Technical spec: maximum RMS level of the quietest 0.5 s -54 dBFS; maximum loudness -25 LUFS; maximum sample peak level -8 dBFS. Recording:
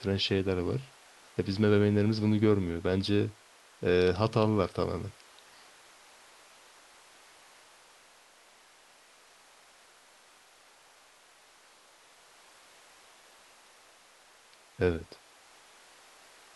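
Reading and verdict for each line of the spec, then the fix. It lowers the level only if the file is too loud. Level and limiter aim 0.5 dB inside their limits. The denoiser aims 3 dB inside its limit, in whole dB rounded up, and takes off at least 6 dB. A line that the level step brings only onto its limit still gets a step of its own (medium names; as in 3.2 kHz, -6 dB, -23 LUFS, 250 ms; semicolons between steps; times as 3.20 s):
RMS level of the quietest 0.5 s -60 dBFS: pass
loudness -29.0 LUFS: pass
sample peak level -11.0 dBFS: pass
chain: none needed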